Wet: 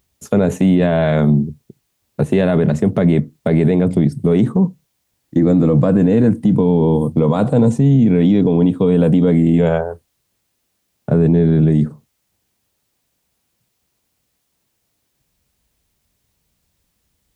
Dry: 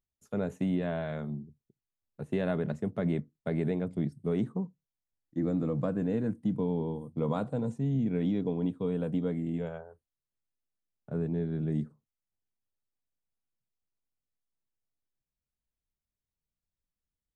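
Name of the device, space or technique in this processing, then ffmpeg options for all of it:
mastering chain: -af "highpass=48,equalizer=frequency=1400:width_type=o:width=0.77:gain=-3,acompressor=threshold=-34dB:ratio=1.5,alimiter=level_in=30.5dB:limit=-1dB:release=50:level=0:latency=1,volume=-4.5dB"

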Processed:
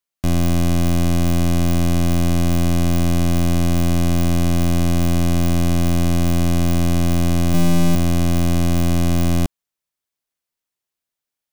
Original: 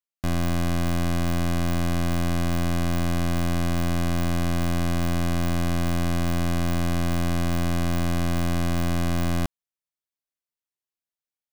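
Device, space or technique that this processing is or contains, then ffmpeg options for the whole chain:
one-band saturation: -filter_complex "[0:a]acrossover=split=510|2800[link_01][link_02][link_03];[link_02]asoftclip=type=tanh:threshold=-34dB[link_04];[link_01][link_04][link_03]amix=inputs=3:normalize=0,asettb=1/sr,asplit=3[link_05][link_06][link_07];[link_05]atrim=end=7.534[link_08];[link_06]atrim=start=7.53:end=7.95,asetpts=PTS-STARTPTS,afade=type=in:duration=0.004:curve=qsin,afade=type=out:start_time=0.416:duration=0.004:curve=qsin,aecho=1:1:6.6:0.86,atrim=end_sample=18522[link_09];[link_07]atrim=start=7.946[link_10];[link_08][link_09]acrossfade=duration=0.004:curve1=hsin:curve2=qsin[link_11];[link_11][link_10]acrossfade=duration=0.004:curve1=qsin:curve2=hsin,volume=7.5dB"

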